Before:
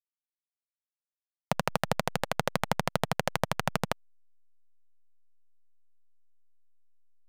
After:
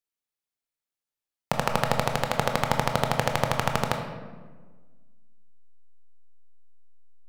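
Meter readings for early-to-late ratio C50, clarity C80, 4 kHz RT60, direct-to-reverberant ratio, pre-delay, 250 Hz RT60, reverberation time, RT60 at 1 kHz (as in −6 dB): 6.0 dB, 7.5 dB, 0.85 s, 3.5 dB, 18 ms, 2.0 s, 1.5 s, 1.3 s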